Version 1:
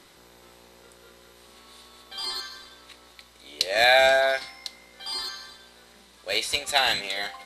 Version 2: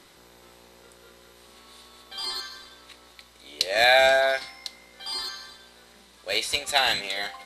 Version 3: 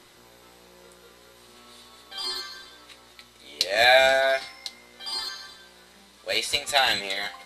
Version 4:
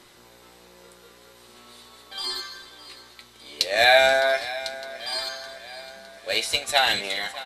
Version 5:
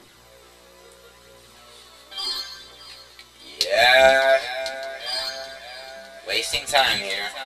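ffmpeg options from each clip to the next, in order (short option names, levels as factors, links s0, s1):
-af anull
-af "flanger=delay=8.3:depth=2.7:regen=47:speed=0.61:shape=sinusoidal,volume=1.68"
-af "aecho=1:1:610|1220|1830|2440|3050|3660:0.158|0.0919|0.0533|0.0309|0.0179|0.0104,volume=1.12"
-filter_complex "[0:a]aphaser=in_gain=1:out_gain=1:delay=3.6:decay=0.38:speed=0.74:type=triangular,asplit=2[s0][s1];[s1]adelay=15,volume=0.501[s2];[s0][s2]amix=inputs=2:normalize=0"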